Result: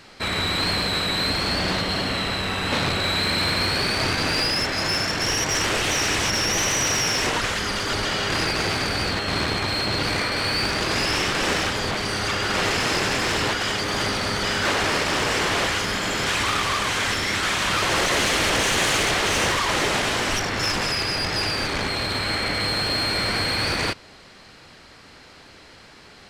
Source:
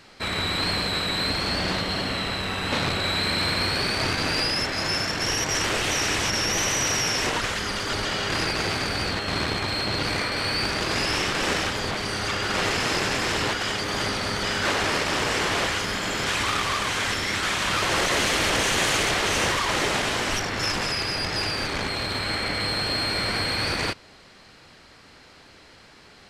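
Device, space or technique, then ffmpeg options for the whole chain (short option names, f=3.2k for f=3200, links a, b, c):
parallel distortion: -filter_complex "[0:a]asplit=2[a][b];[b]asoftclip=type=hard:threshold=-26.5dB,volume=-7dB[c];[a][c]amix=inputs=2:normalize=0"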